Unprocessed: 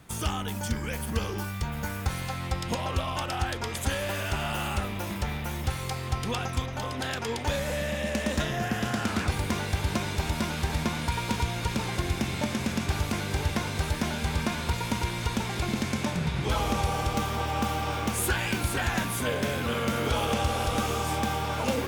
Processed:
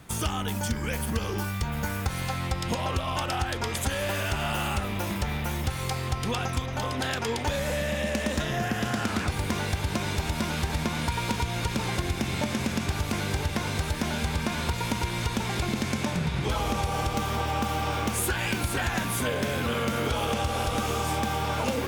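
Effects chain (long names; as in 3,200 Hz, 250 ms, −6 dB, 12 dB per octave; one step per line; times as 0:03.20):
downward compressor, threshold −27 dBFS, peak gain reduction 6.5 dB
level +3.5 dB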